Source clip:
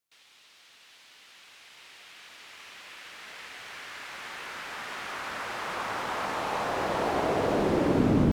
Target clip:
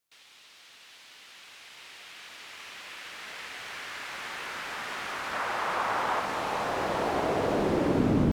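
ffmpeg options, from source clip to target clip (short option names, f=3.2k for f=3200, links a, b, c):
-filter_complex "[0:a]asettb=1/sr,asplit=3[a][b][c];[a]atrim=end=5.334[d];[b]atrim=start=5.33:end=6.2,asetpts=PTS-STARTPTS,afade=t=in:d=0.004:c=qsin,afade=t=out:st=0.866:d=0.004:c=qsin,equalizer=f=900:w=0.64:g=6[e];[c]atrim=start=6.196[f];[d][e]acrossfade=d=0.004:c1=hsin:c2=qsin[g];[g][f]acrossfade=d=0.004:c1=qsin:c2=hsin,asplit=2[h][i];[i]acompressor=threshold=-37dB:ratio=6,volume=-1dB[j];[h][j]amix=inputs=2:normalize=0,volume=-2.5dB"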